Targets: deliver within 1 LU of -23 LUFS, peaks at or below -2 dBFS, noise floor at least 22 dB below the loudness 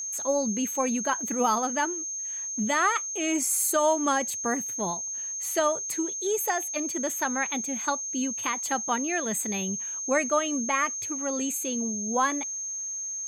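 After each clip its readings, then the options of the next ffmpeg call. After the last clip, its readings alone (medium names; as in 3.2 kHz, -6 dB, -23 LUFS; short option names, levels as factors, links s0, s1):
steady tone 6.4 kHz; tone level -31 dBFS; loudness -27.0 LUFS; peak level -13.5 dBFS; loudness target -23.0 LUFS
-> -af "bandreject=f=6400:w=30"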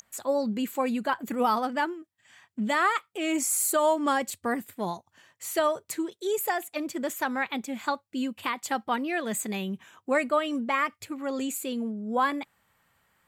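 steady tone not found; loudness -28.5 LUFS; peak level -14.5 dBFS; loudness target -23.0 LUFS
-> -af "volume=1.88"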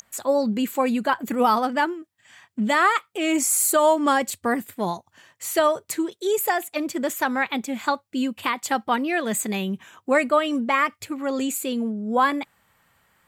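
loudness -23.0 LUFS; peak level -9.0 dBFS; noise floor -70 dBFS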